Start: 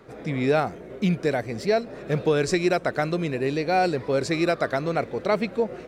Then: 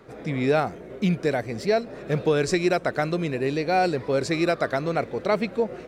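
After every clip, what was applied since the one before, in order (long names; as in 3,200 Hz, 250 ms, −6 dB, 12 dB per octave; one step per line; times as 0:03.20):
no processing that can be heard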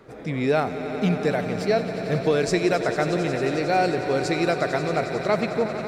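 echo that builds up and dies away 90 ms, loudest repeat 5, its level −13.5 dB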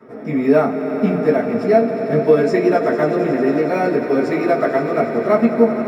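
in parallel at −11.5 dB: decimation without filtering 9×
on the sum: convolution reverb RT60 0.25 s, pre-delay 3 ms, DRR −8.5 dB
level −13.5 dB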